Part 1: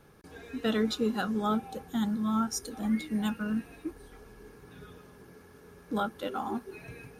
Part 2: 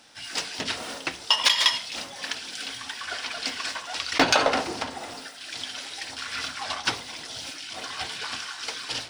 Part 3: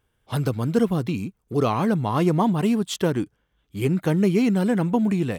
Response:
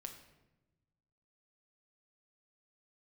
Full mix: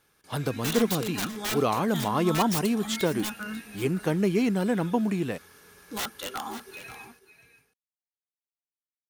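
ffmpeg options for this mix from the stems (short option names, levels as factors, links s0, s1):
-filter_complex "[0:a]tiltshelf=f=1100:g=-9,dynaudnorm=f=140:g=5:m=3.16,aeval=exprs='(mod(6.31*val(0)+1,2)-1)/6.31':c=same,volume=0.376,asplit=2[s0][s1];[s1]volume=0.224[s2];[2:a]highpass=f=230:p=1,volume=0.794[s3];[s2]aecho=0:1:543:1[s4];[s0][s3][s4]amix=inputs=3:normalize=0"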